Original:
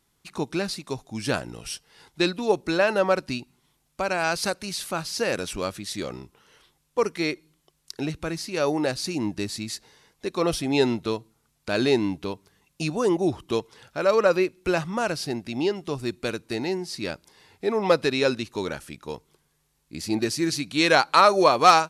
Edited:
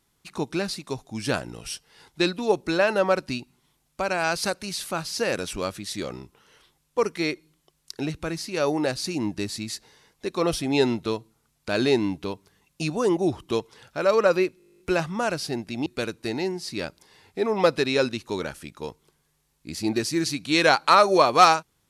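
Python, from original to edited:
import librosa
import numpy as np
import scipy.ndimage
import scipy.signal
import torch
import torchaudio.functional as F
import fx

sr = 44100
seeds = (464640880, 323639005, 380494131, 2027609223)

y = fx.edit(x, sr, fx.stutter(start_s=14.58, slice_s=0.02, count=12),
    fx.cut(start_s=15.64, length_s=0.48), tone=tone)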